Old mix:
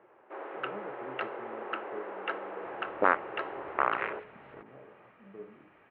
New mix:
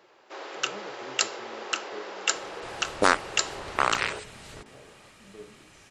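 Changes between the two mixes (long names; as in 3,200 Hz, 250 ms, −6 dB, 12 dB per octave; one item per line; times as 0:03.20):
second sound: remove high-pass filter 500 Hz 6 dB per octave
master: remove Bessel low-pass filter 1,400 Hz, order 8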